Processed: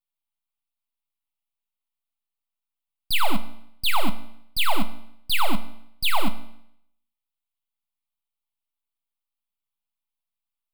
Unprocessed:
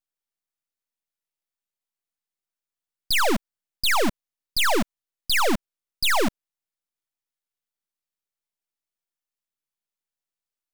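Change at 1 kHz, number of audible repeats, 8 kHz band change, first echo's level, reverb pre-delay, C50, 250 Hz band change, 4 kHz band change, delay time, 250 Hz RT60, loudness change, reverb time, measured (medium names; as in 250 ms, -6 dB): -1.0 dB, no echo, -7.0 dB, no echo, 3 ms, 14.0 dB, -3.5 dB, -1.5 dB, no echo, 0.75 s, -3.0 dB, 0.75 s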